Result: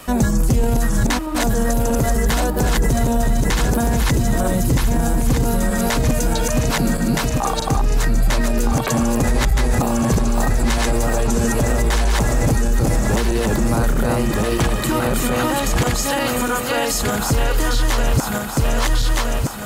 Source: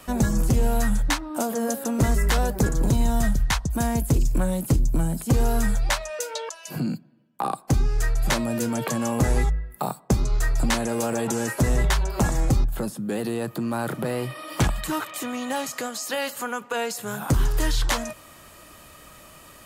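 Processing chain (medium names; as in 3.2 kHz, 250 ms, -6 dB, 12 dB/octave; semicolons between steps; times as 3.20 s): backward echo that repeats 634 ms, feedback 62%, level -1 dB; loudness maximiser +16.5 dB; trim -8.5 dB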